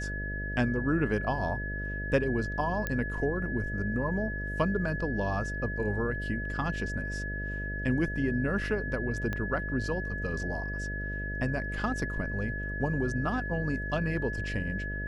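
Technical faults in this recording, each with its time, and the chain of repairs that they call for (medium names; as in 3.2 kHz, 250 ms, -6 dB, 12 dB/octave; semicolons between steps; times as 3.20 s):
buzz 50 Hz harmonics 13 -36 dBFS
whine 1.7 kHz -36 dBFS
2.87 s: pop -17 dBFS
9.33 s: pop -20 dBFS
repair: de-click; band-stop 1.7 kHz, Q 30; de-hum 50 Hz, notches 13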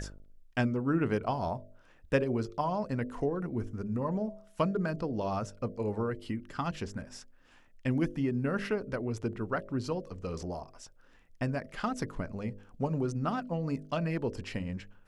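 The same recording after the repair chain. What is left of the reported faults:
9.33 s: pop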